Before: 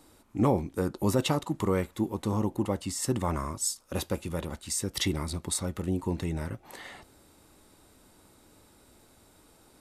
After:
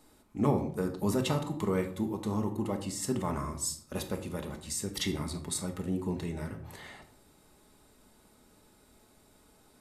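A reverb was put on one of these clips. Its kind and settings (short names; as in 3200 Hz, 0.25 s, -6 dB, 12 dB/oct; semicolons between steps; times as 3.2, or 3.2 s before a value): shoebox room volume 890 m³, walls furnished, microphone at 1.4 m; gain -4.5 dB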